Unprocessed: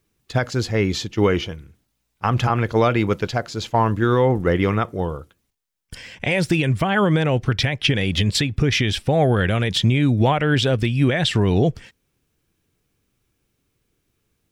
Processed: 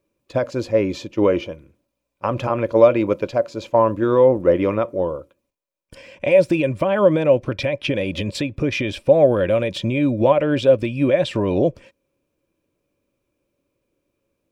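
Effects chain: peaking EQ 560 Hz +11.5 dB 0.27 oct; small resonant body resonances 320/550/980/2400 Hz, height 12 dB, ringing for 20 ms; trim -9.5 dB

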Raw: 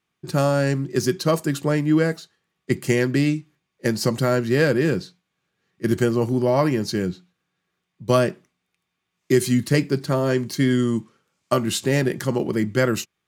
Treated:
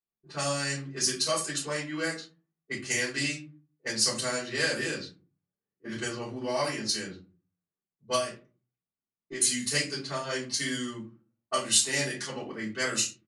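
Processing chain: resampled via 22.05 kHz; pre-emphasis filter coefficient 0.97; 8.15–9.41 s: compression 6:1, threshold -39 dBFS, peak gain reduction 8 dB; simulated room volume 140 m³, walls furnished, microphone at 5 m; level-controlled noise filter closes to 410 Hz, open at -24.5 dBFS; trim -1.5 dB

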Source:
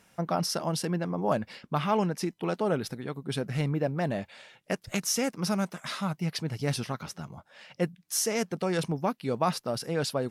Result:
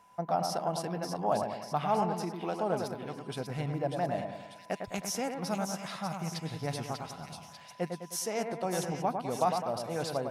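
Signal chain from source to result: whistle 1 kHz -55 dBFS; peaking EQ 750 Hz +10.5 dB 0.56 oct; two-band feedback delay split 2.2 kHz, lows 103 ms, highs 593 ms, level -5.5 dB; trim -7.5 dB

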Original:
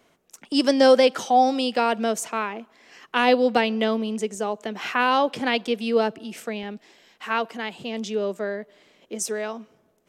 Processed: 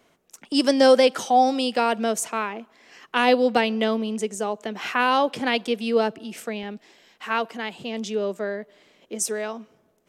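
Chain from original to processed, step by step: dynamic bell 10 kHz, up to +5 dB, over -46 dBFS, Q 1.2

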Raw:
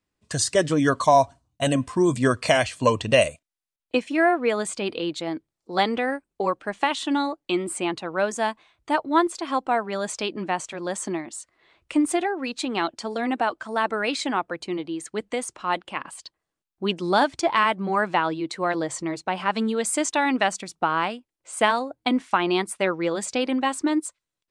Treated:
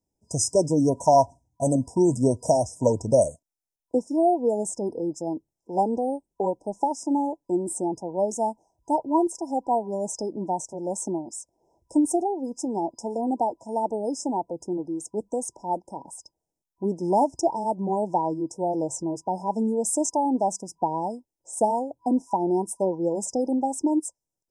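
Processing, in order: FFT band-reject 980–5000 Hz

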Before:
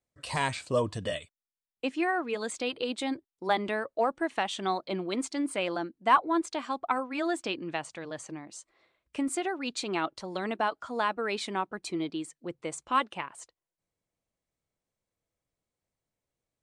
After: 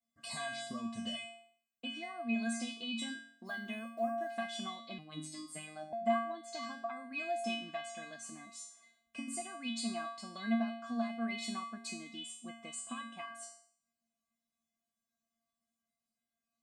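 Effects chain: 3.46–4.32 s: block-companded coder 7-bit; de-hum 137.4 Hz, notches 7; compression 10:1, threshold -33 dBFS, peak gain reduction 17 dB; feedback comb 230 Hz, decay 0.54 s, harmonics odd, mix 100%; 4.98–5.93 s: robot voice 154 Hz; trim +18 dB

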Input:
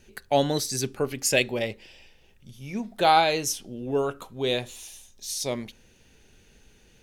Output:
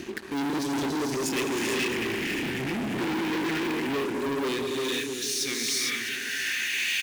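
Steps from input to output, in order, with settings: 1.50–3.68 s: one-bit delta coder 16 kbps, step -24.5 dBFS; upward compressor, threshold -28 dBFS; Chebyshev band-stop 320–1700 Hz, order 3; hum notches 60/120/180/240/300 Hz; gated-style reverb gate 480 ms rising, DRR -1 dB; band-pass sweep 430 Hz -> 2.4 kHz, 4.44–6.97 s; feedback delay 654 ms, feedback 35%, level -14 dB; waveshaping leveller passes 5; tilt EQ +2 dB/octave; trim +4 dB

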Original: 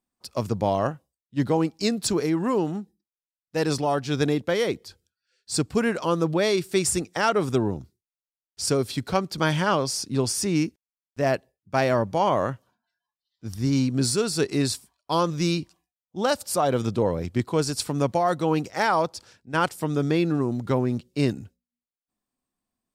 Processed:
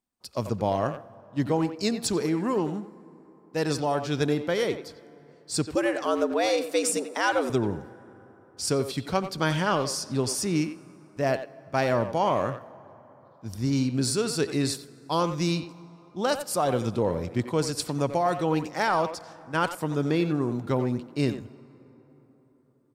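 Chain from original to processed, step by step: 5.75–7.50 s: frequency shift +110 Hz; speakerphone echo 90 ms, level -9 dB; plate-style reverb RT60 4.3 s, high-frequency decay 0.45×, DRR 19.5 dB; trim -2.5 dB

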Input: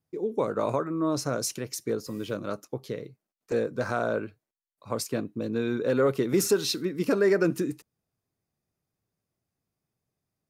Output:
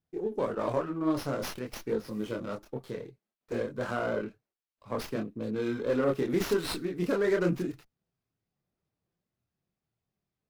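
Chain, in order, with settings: chorus voices 6, 0.94 Hz, delay 26 ms, depth 3 ms; sliding maximum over 5 samples

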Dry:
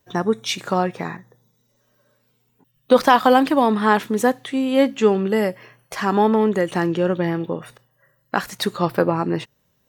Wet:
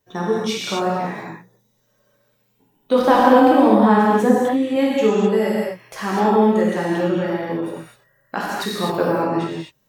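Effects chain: 2.99–4.76 s: tilt shelf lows +5 dB, about 1.1 kHz; gated-style reverb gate 280 ms flat, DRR -5.5 dB; trim -6 dB

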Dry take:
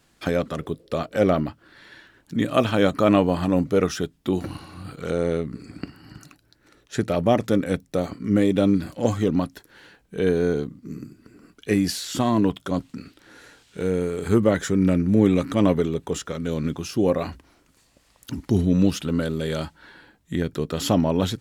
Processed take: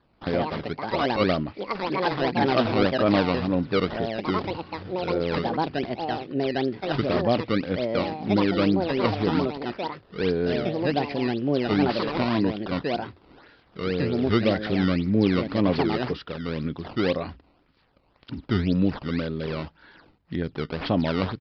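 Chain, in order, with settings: decimation with a swept rate 15×, swing 160% 1.9 Hz; ever faster or slower copies 132 ms, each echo +5 st, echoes 2; resampled via 11.025 kHz; trim -3.5 dB

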